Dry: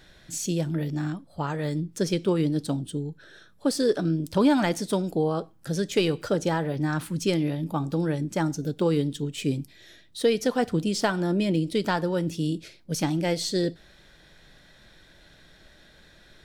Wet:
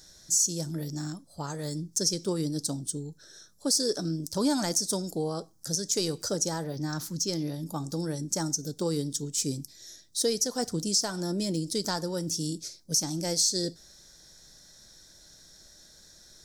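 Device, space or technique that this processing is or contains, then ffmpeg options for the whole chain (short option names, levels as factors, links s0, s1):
over-bright horn tweeter: -filter_complex "[0:a]highshelf=f=4000:t=q:w=3:g=13.5,alimiter=limit=0.398:level=0:latency=1:release=184,asettb=1/sr,asplit=3[s0][s1][s2];[s0]atrim=end=6.644[s3];[s1]atrim=start=6.64:end=7.54,asetpts=PTS-STARTPTS,afade=t=in:d=0.004:c=qsin,afade=t=out:st=0.896:d=0.004:c=qsin,equalizer=f=9200:t=o:w=0.49:g=-13.5[s4];[s2]atrim=start=7.536[s5];[s3][s4]acrossfade=d=0.004:c1=hsin:c2=qsin[s6];[s6][s5]acrossfade=d=0.004:c1=qsin:c2=hsin,volume=0.501"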